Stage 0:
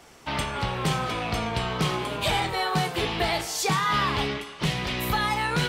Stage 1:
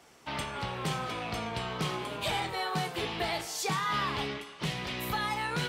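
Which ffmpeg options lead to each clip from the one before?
-af "highpass=f=97:p=1,volume=0.473"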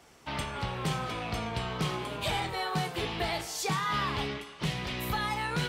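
-af "lowshelf=f=94:g=9.5"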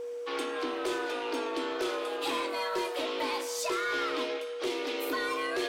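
-af "afreqshift=210,asoftclip=type=tanh:threshold=0.0562,aeval=exprs='val(0)+0.0178*sin(2*PI*480*n/s)':c=same"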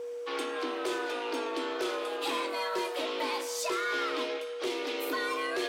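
-af "highpass=f=170:p=1"

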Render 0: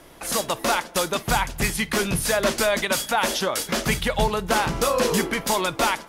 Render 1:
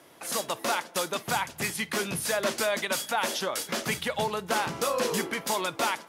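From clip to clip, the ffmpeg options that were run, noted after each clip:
-af "highpass=f=79:w=0.5412,highpass=f=79:w=1.3066,lowshelf=f=150:g=-9,volume=0.531"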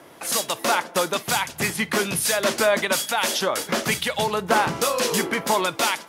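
-filter_complex "[0:a]acrossover=split=2100[s0][s1];[s0]aeval=exprs='val(0)*(1-0.5/2+0.5/2*cos(2*PI*1.1*n/s))':c=same[s2];[s1]aeval=exprs='val(0)*(1-0.5/2-0.5/2*cos(2*PI*1.1*n/s))':c=same[s3];[s2][s3]amix=inputs=2:normalize=0,volume=2.82"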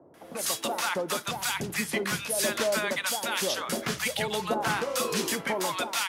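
-filter_complex "[0:a]acrossover=split=860[s0][s1];[s1]adelay=140[s2];[s0][s2]amix=inputs=2:normalize=0,volume=0.531"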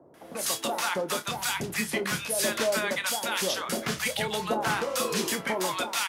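-filter_complex "[0:a]asplit=2[s0][s1];[s1]adelay=27,volume=0.282[s2];[s0][s2]amix=inputs=2:normalize=0"

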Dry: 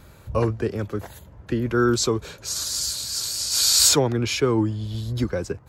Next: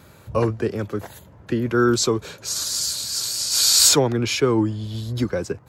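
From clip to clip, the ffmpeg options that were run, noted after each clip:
-af "highpass=100,volume=1.26"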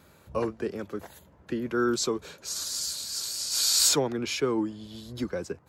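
-af "equalizer=f=110:w=4.9:g=-15,volume=0.422"

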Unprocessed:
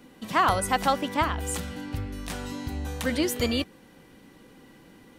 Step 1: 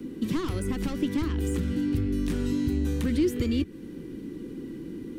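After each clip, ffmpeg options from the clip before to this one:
-filter_complex "[0:a]asoftclip=type=tanh:threshold=0.0708,acrossover=split=110|1300|2600[s0][s1][s2][s3];[s0]acompressor=threshold=0.00794:ratio=4[s4];[s1]acompressor=threshold=0.00891:ratio=4[s5];[s2]acompressor=threshold=0.00631:ratio=4[s6];[s3]acompressor=threshold=0.00631:ratio=4[s7];[s4][s5][s6][s7]amix=inputs=4:normalize=0,lowshelf=f=500:t=q:w=3:g=11.5"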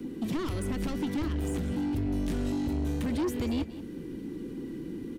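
-af "asoftclip=type=tanh:threshold=0.0531,aecho=1:1:185:0.178"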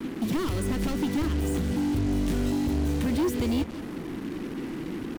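-af "acrusher=bits=6:mix=0:aa=0.5,volume=1.58"

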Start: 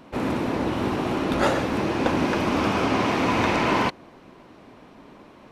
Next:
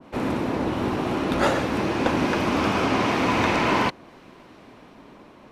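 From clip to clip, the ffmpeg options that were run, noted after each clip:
-filter_complex "[0:a]acrossover=split=120|1400[s0][s1][s2];[s2]dynaudnorm=f=250:g=9:m=1.58[s3];[s0][s1][s3]amix=inputs=3:normalize=0,adynamicequalizer=threshold=0.0178:dfrequency=1600:dqfactor=0.7:tfrequency=1600:tqfactor=0.7:attack=5:release=100:ratio=0.375:range=1.5:mode=cutabove:tftype=highshelf"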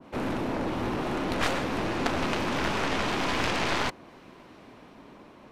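-af "aeval=exprs='0.501*(cos(1*acos(clip(val(0)/0.501,-1,1)))-cos(1*PI/2))+0.141*(cos(3*acos(clip(val(0)/0.501,-1,1)))-cos(3*PI/2))+0.158*(cos(4*acos(clip(val(0)/0.501,-1,1)))-cos(4*PI/2))+0.126*(cos(7*acos(clip(val(0)/0.501,-1,1)))-cos(7*PI/2))':c=same,volume=0.473"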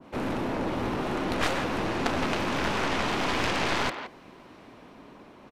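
-filter_complex "[0:a]asplit=2[s0][s1];[s1]adelay=170,highpass=300,lowpass=3400,asoftclip=type=hard:threshold=0.126,volume=0.398[s2];[s0][s2]amix=inputs=2:normalize=0"

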